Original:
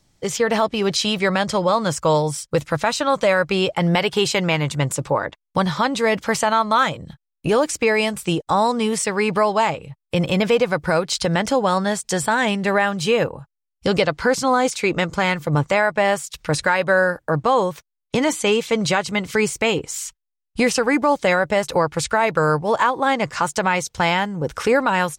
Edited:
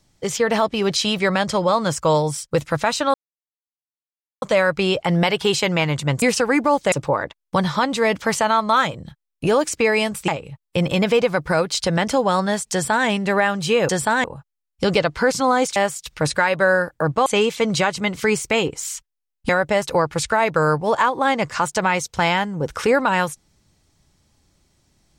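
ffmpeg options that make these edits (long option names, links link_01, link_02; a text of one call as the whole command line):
ffmpeg -i in.wav -filter_complex "[0:a]asplit=10[link_01][link_02][link_03][link_04][link_05][link_06][link_07][link_08][link_09][link_10];[link_01]atrim=end=3.14,asetpts=PTS-STARTPTS,afade=type=out:start_time=3.136:duration=0.004:curve=hsin,apad=pad_dur=1.28[link_11];[link_02]atrim=start=3.14:end=4.942,asetpts=PTS-STARTPTS,afade=type=in:duration=0.004:curve=hsin[link_12];[link_03]atrim=start=20.598:end=21.302[link_13];[link_04]atrim=start=4.938:end=8.302[link_14];[link_05]atrim=start=9.658:end=13.272[link_15];[link_06]atrim=start=12.098:end=12.452[link_16];[link_07]atrim=start=13.268:end=14.792[link_17];[link_08]atrim=start=16.038:end=17.542[link_18];[link_09]atrim=start=18.368:end=20.602[link_19];[link_10]atrim=start=21.298[link_20];[link_11][link_12]concat=n=2:v=0:a=1[link_21];[link_21][link_13]acrossfade=duration=0.004:curve1=hsin:curve2=hsin[link_22];[link_22][link_14]acrossfade=duration=0.004:curve1=hsin:curve2=hsin[link_23];[link_23][link_15]acrossfade=duration=0.004:curve1=hsin:curve2=hsin[link_24];[link_24][link_16]acrossfade=duration=0.004:curve1=hsin:curve2=hsin[link_25];[link_25][link_17]acrossfade=duration=0.004:curve1=hsin:curve2=hsin[link_26];[link_26][link_18]acrossfade=duration=0.004:curve1=hsin:curve2=hsin[link_27];[link_27][link_19]acrossfade=duration=0.004:curve1=hsin:curve2=hsin[link_28];[link_28][link_20]acrossfade=duration=0.004:curve1=hsin:curve2=hsin" out.wav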